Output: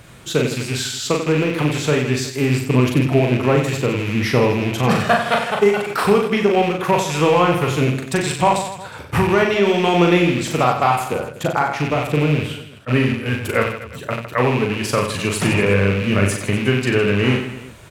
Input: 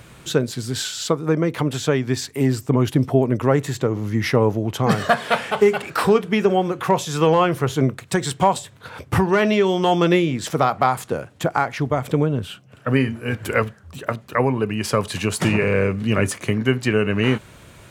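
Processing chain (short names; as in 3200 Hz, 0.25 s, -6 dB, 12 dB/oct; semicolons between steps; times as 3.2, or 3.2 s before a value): rattling part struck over -27 dBFS, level -18 dBFS; reverse bouncing-ball echo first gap 40 ms, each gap 1.3×, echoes 5; attack slew limiter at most 530 dB/s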